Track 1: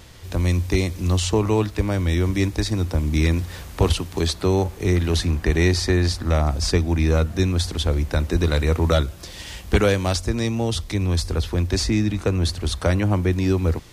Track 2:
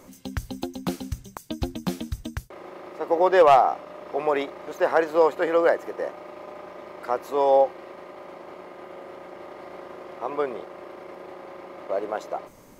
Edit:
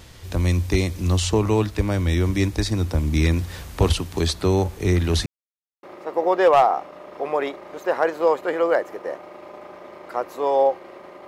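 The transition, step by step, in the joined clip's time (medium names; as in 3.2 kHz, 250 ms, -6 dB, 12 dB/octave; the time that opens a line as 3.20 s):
track 1
5.26–5.83 s: mute
5.83 s: go over to track 2 from 2.77 s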